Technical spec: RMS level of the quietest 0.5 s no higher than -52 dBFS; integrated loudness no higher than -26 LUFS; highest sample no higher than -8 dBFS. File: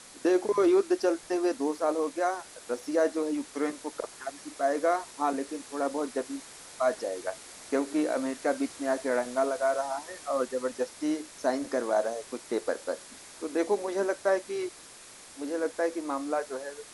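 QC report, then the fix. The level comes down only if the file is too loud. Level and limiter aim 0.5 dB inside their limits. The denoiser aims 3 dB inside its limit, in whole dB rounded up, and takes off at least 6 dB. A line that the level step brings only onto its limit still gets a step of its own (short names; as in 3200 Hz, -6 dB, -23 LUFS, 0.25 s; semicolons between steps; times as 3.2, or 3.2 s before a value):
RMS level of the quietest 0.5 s -50 dBFS: fail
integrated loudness -30.0 LUFS: OK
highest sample -13.0 dBFS: OK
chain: denoiser 6 dB, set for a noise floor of -50 dBFS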